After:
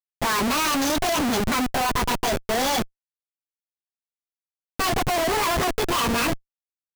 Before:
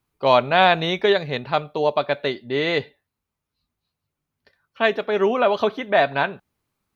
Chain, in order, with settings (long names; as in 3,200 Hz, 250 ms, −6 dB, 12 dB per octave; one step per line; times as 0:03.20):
phase-vocoder pitch shift without resampling +9 semitones
parametric band 1,200 Hz −4.5 dB 2.9 octaves
comparator with hysteresis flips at −36.5 dBFS
level +7 dB